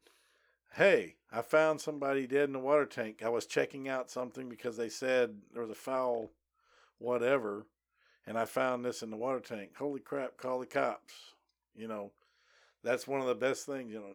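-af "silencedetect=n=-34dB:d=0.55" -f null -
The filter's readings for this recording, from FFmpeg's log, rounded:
silence_start: 0.00
silence_end: 0.78 | silence_duration: 0.78
silence_start: 6.25
silence_end: 7.05 | silence_duration: 0.80
silence_start: 7.58
silence_end: 8.28 | silence_duration: 0.70
silence_start: 10.94
silence_end: 11.82 | silence_duration: 0.88
silence_start: 12.03
silence_end: 12.86 | silence_duration: 0.83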